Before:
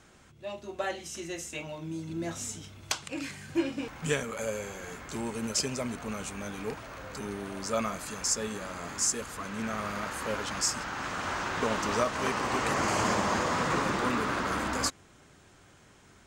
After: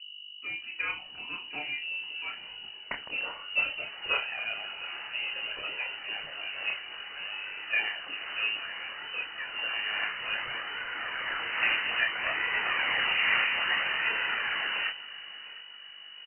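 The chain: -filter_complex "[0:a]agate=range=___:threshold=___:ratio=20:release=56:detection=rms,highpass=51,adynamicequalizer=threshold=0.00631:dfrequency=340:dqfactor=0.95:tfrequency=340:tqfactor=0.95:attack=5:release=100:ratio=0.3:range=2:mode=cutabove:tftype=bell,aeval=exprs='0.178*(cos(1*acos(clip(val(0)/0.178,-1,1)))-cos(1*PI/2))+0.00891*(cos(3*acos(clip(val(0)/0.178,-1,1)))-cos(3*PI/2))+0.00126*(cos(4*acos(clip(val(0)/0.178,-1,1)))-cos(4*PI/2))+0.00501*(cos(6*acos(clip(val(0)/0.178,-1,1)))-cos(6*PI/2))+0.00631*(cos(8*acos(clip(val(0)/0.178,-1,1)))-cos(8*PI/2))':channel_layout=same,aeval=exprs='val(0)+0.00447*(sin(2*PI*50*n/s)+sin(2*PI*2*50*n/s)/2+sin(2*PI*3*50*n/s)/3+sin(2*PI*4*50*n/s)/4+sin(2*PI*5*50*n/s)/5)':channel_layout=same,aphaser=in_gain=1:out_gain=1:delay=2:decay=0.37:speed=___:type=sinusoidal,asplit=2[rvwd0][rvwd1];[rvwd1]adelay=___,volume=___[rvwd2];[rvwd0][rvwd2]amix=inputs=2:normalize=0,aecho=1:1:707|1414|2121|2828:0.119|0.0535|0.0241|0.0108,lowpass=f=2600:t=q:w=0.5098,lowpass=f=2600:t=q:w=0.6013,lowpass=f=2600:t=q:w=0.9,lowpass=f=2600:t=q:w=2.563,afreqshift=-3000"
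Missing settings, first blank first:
0.0126, 0.002, 0.6, 28, 0.562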